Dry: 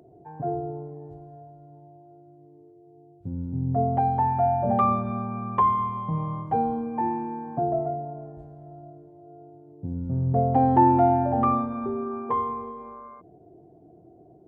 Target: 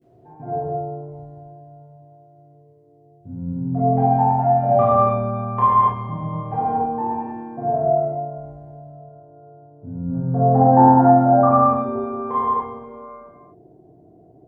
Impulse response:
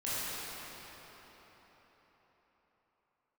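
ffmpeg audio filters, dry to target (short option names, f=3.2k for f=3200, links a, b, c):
-filter_complex "[0:a]asettb=1/sr,asplit=3[a][b][c];[a]atrim=end=8.844[d];[b]atrim=start=8.84:end=11.52,asetpts=PTS-STARTPTS,afade=t=in:d=0.004:c=qsin,afade=t=out:st=2.676:d=0.004:c=qsin,highshelf=f=1.9k:t=q:w=3:g=-8.5[e];[c]atrim=start=11.516[f];[d][e]acrossfade=d=0.004:c1=hsin:c2=qsin[g];[g][f]acrossfade=d=0.004:c1=qsin:c2=hsin[h];[1:a]atrim=start_sample=2205,afade=t=out:st=0.38:d=0.01,atrim=end_sample=17199[i];[h][i]afir=irnorm=-1:irlink=0,adynamicequalizer=threshold=0.0282:dfrequency=770:dqfactor=0.91:tfrequency=770:tqfactor=0.91:attack=5:release=100:ratio=0.375:range=2.5:mode=boostabove:tftype=bell,volume=-2dB"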